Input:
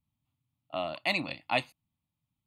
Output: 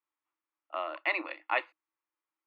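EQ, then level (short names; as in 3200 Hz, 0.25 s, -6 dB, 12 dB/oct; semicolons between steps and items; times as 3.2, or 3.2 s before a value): rippled Chebyshev high-pass 310 Hz, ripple 3 dB; synth low-pass 1700 Hz, resonance Q 1.8; bell 720 Hz -6.5 dB 0.47 oct; +2.5 dB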